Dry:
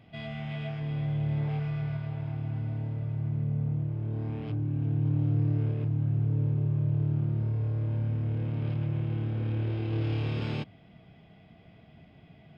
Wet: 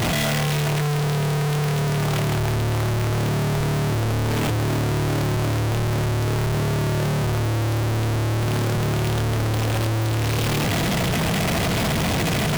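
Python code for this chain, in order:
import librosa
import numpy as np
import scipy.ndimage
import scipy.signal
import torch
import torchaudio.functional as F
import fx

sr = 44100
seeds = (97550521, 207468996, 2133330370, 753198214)

y = np.sign(x) * np.sqrt(np.mean(np.square(x)))
y = F.gain(torch.from_numpy(y), 8.5).numpy()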